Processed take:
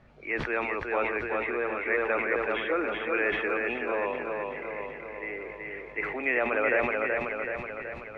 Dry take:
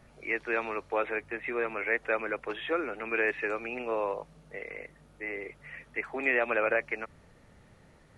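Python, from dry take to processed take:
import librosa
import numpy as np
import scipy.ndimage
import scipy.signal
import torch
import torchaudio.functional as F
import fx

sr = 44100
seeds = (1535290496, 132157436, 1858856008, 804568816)

p1 = scipy.signal.sosfilt(scipy.signal.butter(2, 3500.0, 'lowpass', fs=sr, output='sos'), x)
p2 = p1 + fx.echo_feedback(p1, sr, ms=377, feedback_pct=59, wet_db=-3.5, dry=0)
y = fx.sustainer(p2, sr, db_per_s=46.0)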